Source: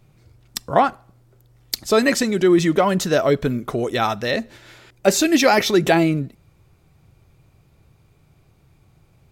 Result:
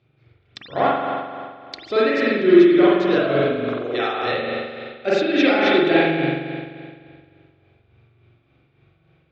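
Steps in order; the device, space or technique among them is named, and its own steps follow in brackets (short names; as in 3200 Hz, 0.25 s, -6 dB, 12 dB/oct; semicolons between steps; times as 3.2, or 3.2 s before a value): 3.63–4.21 HPF 560 Hz -> 210 Hz 24 dB/oct; combo amplifier with spring reverb and tremolo (spring tank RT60 2 s, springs 43 ms, chirp 70 ms, DRR -8 dB; tremolo 3.5 Hz, depth 44%; speaker cabinet 92–4300 Hz, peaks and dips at 190 Hz -8 dB, 350 Hz +5 dB, 970 Hz -7 dB, 1500 Hz +3 dB, 2400 Hz +4 dB, 3500 Hz +5 dB); gain -7.5 dB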